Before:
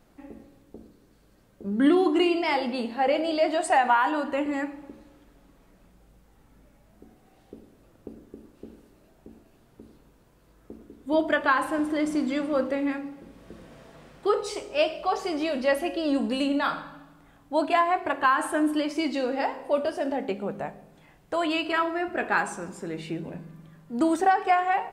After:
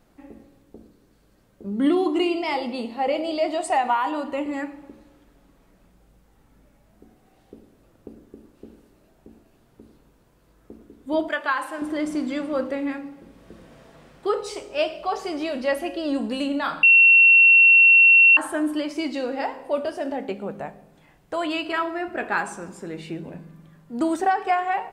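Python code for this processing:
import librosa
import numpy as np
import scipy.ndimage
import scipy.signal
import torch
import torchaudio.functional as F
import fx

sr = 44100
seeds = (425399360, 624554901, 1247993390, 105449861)

y = fx.peak_eq(x, sr, hz=1600.0, db=-13.5, octaves=0.21, at=(1.66, 4.57))
y = fx.highpass(y, sr, hz=780.0, slope=6, at=(11.28, 11.82))
y = fx.edit(y, sr, fx.bleep(start_s=16.83, length_s=1.54, hz=2720.0, db=-9.5), tone=tone)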